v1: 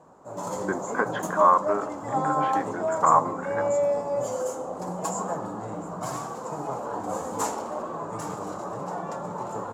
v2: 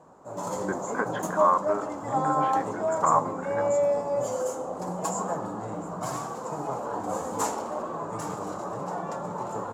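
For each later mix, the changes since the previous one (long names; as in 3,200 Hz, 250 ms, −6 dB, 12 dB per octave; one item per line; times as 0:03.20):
speech −3.5 dB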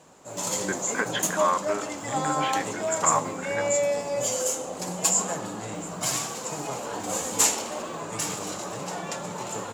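master: add high shelf with overshoot 1,700 Hz +13.5 dB, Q 1.5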